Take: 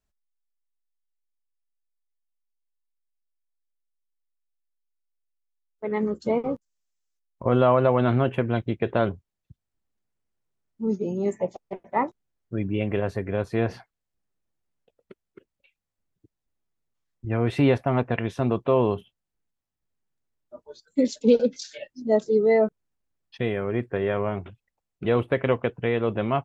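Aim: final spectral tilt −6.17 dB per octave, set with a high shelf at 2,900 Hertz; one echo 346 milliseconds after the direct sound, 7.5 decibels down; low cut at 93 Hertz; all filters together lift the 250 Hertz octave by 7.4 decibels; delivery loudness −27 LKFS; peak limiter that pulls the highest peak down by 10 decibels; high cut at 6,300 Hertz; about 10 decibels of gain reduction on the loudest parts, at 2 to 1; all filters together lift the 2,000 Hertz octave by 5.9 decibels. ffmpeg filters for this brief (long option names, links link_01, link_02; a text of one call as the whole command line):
ffmpeg -i in.wav -af "highpass=93,lowpass=6300,equalizer=frequency=250:width_type=o:gain=8.5,equalizer=frequency=2000:width_type=o:gain=5,highshelf=frequency=2900:gain=5.5,acompressor=threshold=-27dB:ratio=2,alimiter=limit=-21dB:level=0:latency=1,aecho=1:1:346:0.422,volume=5dB" out.wav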